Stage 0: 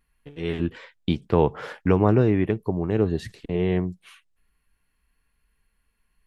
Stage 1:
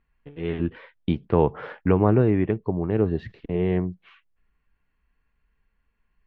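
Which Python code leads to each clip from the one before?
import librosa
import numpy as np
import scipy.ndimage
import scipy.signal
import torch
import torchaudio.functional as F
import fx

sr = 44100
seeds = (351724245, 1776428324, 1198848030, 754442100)

y = scipy.signal.sosfilt(scipy.signal.bessel(4, 2300.0, 'lowpass', norm='mag', fs=sr, output='sos'), x)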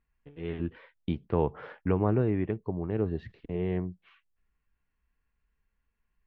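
y = fx.peak_eq(x, sr, hz=71.0, db=3.0, octaves=0.77)
y = F.gain(torch.from_numpy(y), -7.5).numpy()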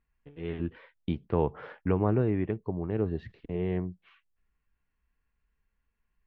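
y = x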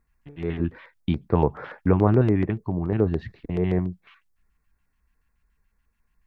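y = fx.filter_lfo_notch(x, sr, shape='square', hz=7.0, low_hz=470.0, high_hz=3000.0, q=1.1)
y = F.gain(torch.from_numpy(y), 8.0).numpy()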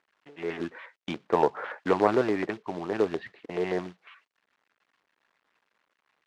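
y = fx.tracing_dist(x, sr, depth_ms=0.071)
y = fx.quant_companded(y, sr, bits=6)
y = fx.bandpass_edges(y, sr, low_hz=480.0, high_hz=3500.0)
y = F.gain(torch.from_numpy(y), 3.0).numpy()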